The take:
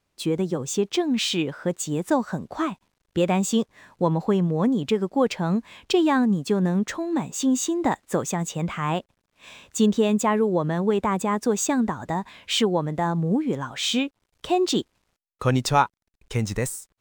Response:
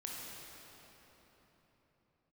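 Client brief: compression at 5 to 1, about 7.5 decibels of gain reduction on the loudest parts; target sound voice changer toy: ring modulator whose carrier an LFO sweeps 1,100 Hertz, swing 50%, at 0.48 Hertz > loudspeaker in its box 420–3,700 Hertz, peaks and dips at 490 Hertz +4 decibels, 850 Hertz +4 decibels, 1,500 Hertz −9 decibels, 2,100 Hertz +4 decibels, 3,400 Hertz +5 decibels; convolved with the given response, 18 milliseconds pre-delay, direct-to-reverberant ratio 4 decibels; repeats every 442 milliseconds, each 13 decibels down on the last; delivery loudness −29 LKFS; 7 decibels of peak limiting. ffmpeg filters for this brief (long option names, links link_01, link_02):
-filter_complex "[0:a]acompressor=threshold=-23dB:ratio=5,alimiter=limit=-20.5dB:level=0:latency=1,aecho=1:1:442|884|1326:0.224|0.0493|0.0108,asplit=2[link_01][link_02];[1:a]atrim=start_sample=2205,adelay=18[link_03];[link_02][link_03]afir=irnorm=-1:irlink=0,volume=-3.5dB[link_04];[link_01][link_04]amix=inputs=2:normalize=0,aeval=exprs='val(0)*sin(2*PI*1100*n/s+1100*0.5/0.48*sin(2*PI*0.48*n/s))':channel_layout=same,highpass=420,equalizer=frequency=490:width_type=q:width=4:gain=4,equalizer=frequency=850:width_type=q:width=4:gain=4,equalizer=frequency=1500:width_type=q:width=4:gain=-9,equalizer=frequency=2100:width_type=q:width=4:gain=4,equalizer=frequency=3400:width_type=q:width=4:gain=5,lowpass=frequency=3700:width=0.5412,lowpass=frequency=3700:width=1.3066,volume=1.5dB"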